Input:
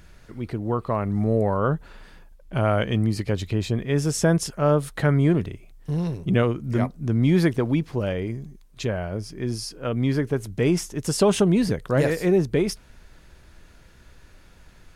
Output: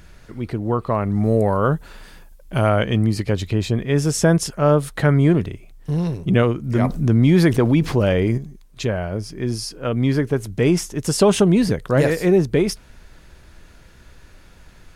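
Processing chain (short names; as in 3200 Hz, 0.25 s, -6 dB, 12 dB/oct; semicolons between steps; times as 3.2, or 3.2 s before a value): 1.24–2.69 high shelf 5500 Hz +10.5 dB; 6.84–8.38 fast leveller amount 50%; gain +4 dB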